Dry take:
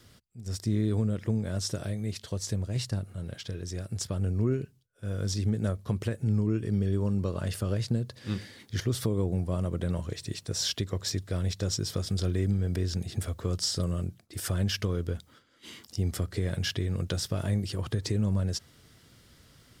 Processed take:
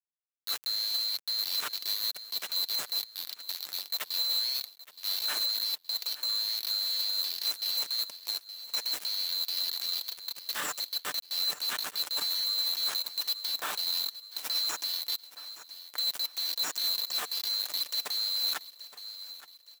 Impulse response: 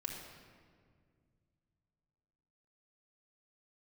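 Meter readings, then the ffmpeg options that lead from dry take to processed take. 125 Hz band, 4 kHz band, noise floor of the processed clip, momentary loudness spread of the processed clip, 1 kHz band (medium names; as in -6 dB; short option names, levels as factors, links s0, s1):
under -40 dB, +11.0 dB, -57 dBFS, 9 LU, +2.5 dB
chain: -filter_complex "[0:a]afftfilt=real='real(if(lt(b,736),b+184*(1-2*mod(floor(b/184),2)),b),0)':imag='imag(if(lt(b,736),b+184*(1-2*mod(floor(b/184),2)),b),0)':win_size=2048:overlap=0.75,acrusher=bits=4:mix=0:aa=0.000001,highpass=220,lowshelf=f=300:g=-4.5,asplit=2[s0][s1];[s1]aecho=0:1:870|1740|2610:0.106|0.0466|0.0205[s2];[s0][s2]amix=inputs=2:normalize=0,alimiter=level_in=1.06:limit=0.0631:level=0:latency=1:release=24,volume=0.944,aecho=1:1:6.7:0.32"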